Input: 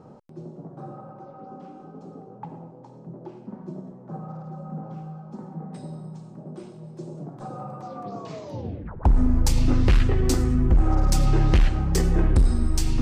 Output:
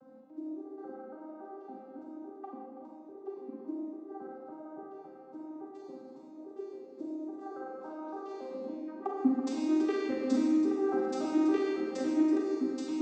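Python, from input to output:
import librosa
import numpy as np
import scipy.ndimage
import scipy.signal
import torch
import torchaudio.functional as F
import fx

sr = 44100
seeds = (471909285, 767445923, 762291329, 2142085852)

y = fx.vocoder_arp(x, sr, chord='minor triad', root=60, every_ms=280)
y = y + 10.0 ** (-13.0 / 20.0) * np.pad(y, (int(329 * sr / 1000.0), 0))[:len(y)]
y = fx.rev_schroeder(y, sr, rt60_s=1.4, comb_ms=32, drr_db=-1.0)
y = y * 10.0 ** (-6.0 / 20.0)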